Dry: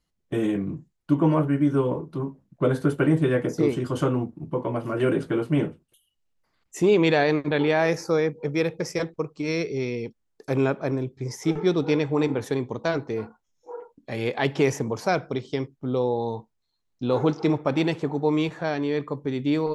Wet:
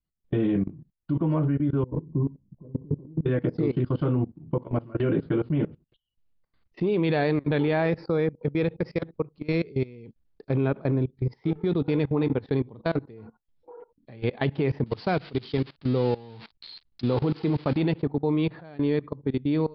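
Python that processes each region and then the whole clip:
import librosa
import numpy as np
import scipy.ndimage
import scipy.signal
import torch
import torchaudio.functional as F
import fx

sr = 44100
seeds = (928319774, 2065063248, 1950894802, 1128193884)

y = fx.chain(x, sr, fx.brickwall_lowpass(high_hz=1100.0),
    fx.over_compress(threshold_db=-27.0, ratio=-0.5),
    fx.peak_eq(hz=710.0, db=-12.0, octaves=1.0), at=(1.83, 3.26))
y = fx.chain(y, sr, fx.crossing_spikes(level_db=-18.5),
    fx.peak_eq(hz=590.0, db=-3.0, octaves=0.23), at=(14.86, 17.78))
y = scipy.signal.sosfilt(scipy.signal.butter(16, 4800.0, 'lowpass', fs=sr, output='sos'), y)
y = fx.low_shelf(y, sr, hz=270.0, db=11.5)
y = fx.level_steps(y, sr, step_db=21)
y = y * librosa.db_to_amplitude(-2.0)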